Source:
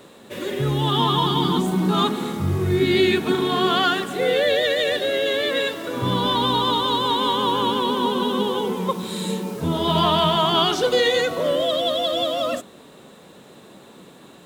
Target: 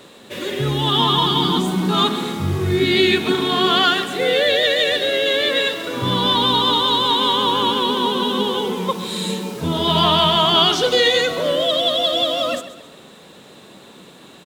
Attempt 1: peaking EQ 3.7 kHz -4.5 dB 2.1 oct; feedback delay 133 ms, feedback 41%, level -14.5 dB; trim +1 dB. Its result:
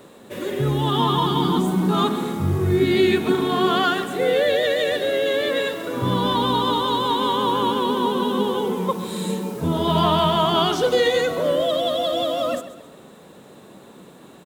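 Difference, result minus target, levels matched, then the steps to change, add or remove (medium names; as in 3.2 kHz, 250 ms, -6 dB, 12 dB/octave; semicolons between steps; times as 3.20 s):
4 kHz band -6.0 dB
change: peaking EQ 3.7 kHz +5.5 dB 2.1 oct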